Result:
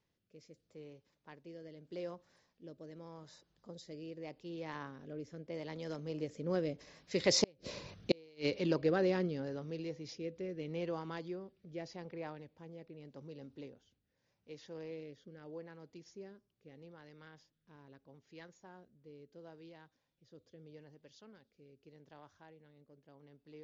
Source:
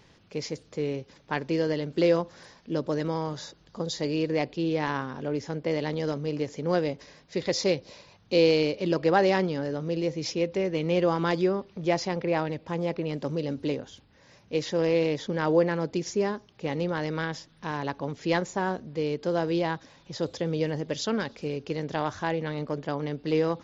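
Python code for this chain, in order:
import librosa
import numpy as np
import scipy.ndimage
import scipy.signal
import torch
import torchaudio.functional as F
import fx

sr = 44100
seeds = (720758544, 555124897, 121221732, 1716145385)

y = fx.doppler_pass(x, sr, speed_mps=10, closest_m=2.3, pass_at_s=7.8)
y = fx.gate_flip(y, sr, shuts_db=-20.0, range_db=-37)
y = fx.rotary(y, sr, hz=0.8)
y = y * 10.0 ** (8.0 / 20.0)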